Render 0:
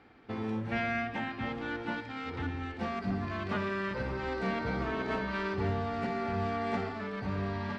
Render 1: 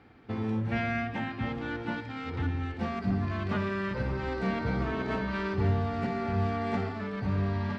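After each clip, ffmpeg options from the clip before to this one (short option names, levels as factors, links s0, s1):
-af "equalizer=f=100:t=o:w=2.2:g=7.5"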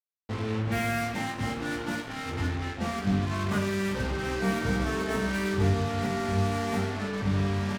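-af "acrusher=bits=5:mix=0:aa=0.5,aecho=1:1:20|48|87.2|142.1|218.9:0.631|0.398|0.251|0.158|0.1"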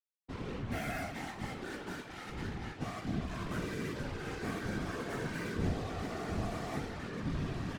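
-af "afftfilt=real='hypot(re,im)*cos(2*PI*random(0))':imag='hypot(re,im)*sin(2*PI*random(1))':win_size=512:overlap=0.75,volume=0.668"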